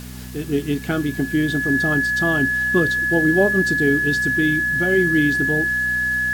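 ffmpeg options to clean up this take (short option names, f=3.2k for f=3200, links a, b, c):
-af "adeclick=t=4,bandreject=f=62.3:t=h:w=4,bandreject=f=124.6:t=h:w=4,bandreject=f=186.9:t=h:w=4,bandreject=f=249.2:t=h:w=4,bandreject=f=1.7k:w=30,afwtdn=0.0079"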